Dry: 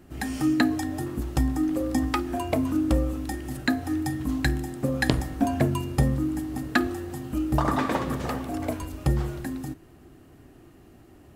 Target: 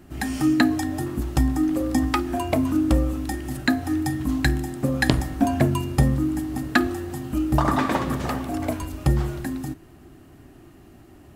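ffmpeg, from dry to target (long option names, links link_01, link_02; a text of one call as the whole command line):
ffmpeg -i in.wav -af "equalizer=frequency=480:width=5.8:gain=-6,volume=3.5dB" out.wav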